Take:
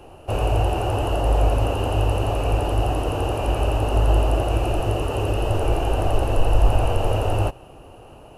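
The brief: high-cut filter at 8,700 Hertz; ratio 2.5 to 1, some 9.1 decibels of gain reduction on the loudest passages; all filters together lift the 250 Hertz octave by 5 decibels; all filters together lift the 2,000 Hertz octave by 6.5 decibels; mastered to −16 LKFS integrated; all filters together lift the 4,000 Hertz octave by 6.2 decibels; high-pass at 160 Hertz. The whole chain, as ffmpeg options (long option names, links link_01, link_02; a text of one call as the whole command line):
ffmpeg -i in.wav -af "highpass=160,lowpass=8700,equalizer=frequency=250:width_type=o:gain=7.5,equalizer=frequency=2000:width_type=o:gain=7.5,equalizer=frequency=4000:width_type=o:gain=5,acompressor=threshold=-33dB:ratio=2.5,volume=16dB" out.wav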